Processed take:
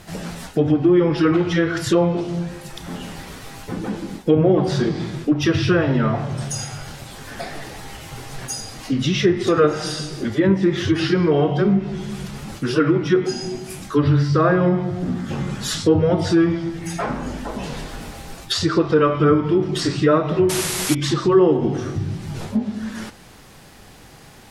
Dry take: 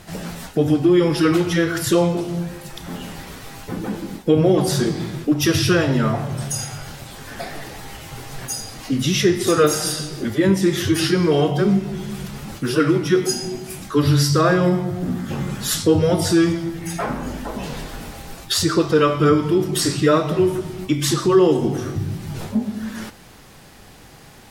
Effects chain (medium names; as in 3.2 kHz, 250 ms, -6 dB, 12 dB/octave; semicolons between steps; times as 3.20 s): low-pass that closes with the level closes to 2 kHz, closed at -12 dBFS; painted sound noise, 20.49–20.95 s, 300–12000 Hz -25 dBFS